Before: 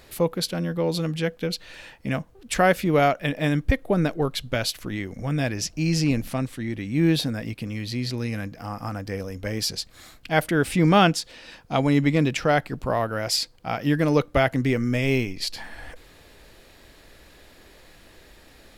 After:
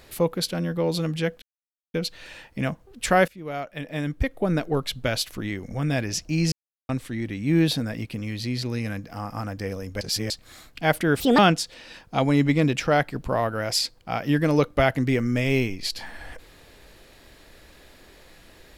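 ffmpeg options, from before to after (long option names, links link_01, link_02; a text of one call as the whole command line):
ffmpeg -i in.wav -filter_complex "[0:a]asplit=9[link_01][link_02][link_03][link_04][link_05][link_06][link_07][link_08][link_09];[link_01]atrim=end=1.42,asetpts=PTS-STARTPTS,afade=type=out:start_time=1.416:duration=0.004:curve=hsin,apad=pad_dur=0.52[link_10];[link_02]atrim=start=1.42:end=2.76,asetpts=PTS-STARTPTS,afade=type=in:duration=0.004:curve=hsin,afade=type=out:start_time=1.336:duration=0.004:curve=hsin:silence=0.0707946[link_11];[link_03]atrim=start=2.76:end=6,asetpts=PTS-STARTPTS,afade=type=in:duration=1.51:silence=0.0707946,afade=type=out:start_time=3.236:duration=0.004:curve=hsin[link_12];[link_04]atrim=start=6:end=6.37,asetpts=PTS-STARTPTS,volume=0[link_13];[link_05]atrim=start=6.37:end=9.492,asetpts=PTS-STARTPTS,afade=type=in:duration=0.004:curve=hsin[link_14];[link_06]atrim=start=9.488:end=9.782,asetpts=PTS-STARTPTS,areverse[link_15];[link_07]atrim=start=9.778:end=10.684[link_16];[link_08]atrim=start=10.68:end=10.96,asetpts=PTS-STARTPTS,asetrate=66591,aresample=44100,atrim=end_sample=8177,asetpts=PTS-STARTPTS[link_17];[link_09]atrim=start=10.956[link_18];[link_10][link_11][link_12][link_13][link_14]concat=n=5:v=0:a=1[link_19];[link_19][link_15]acrossfade=duration=0.004:curve1=hsin:curve2=hsin[link_20];[link_20][link_16]acrossfade=duration=0.004:curve1=hsin:curve2=hsin[link_21];[link_21][link_17]acrossfade=duration=0.004:curve1=hsin:curve2=hsin[link_22];[link_22][link_18]acrossfade=duration=0.004:curve1=hsin:curve2=hsin" out.wav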